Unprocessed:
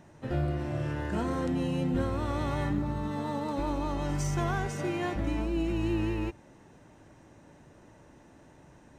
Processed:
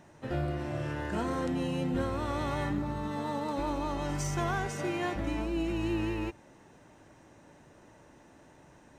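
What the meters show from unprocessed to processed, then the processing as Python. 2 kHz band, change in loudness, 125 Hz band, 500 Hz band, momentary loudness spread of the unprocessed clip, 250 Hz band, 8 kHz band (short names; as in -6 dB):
+1.0 dB, -1.5 dB, -3.5 dB, -0.5 dB, 3 LU, -2.0 dB, +1.0 dB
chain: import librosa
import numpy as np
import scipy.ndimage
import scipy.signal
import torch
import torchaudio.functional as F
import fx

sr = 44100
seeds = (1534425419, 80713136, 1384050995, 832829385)

y = fx.low_shelf(x, sr, hz=290.0, db=-5.5)
y = y * librosa.db_to_amplitude(1.0)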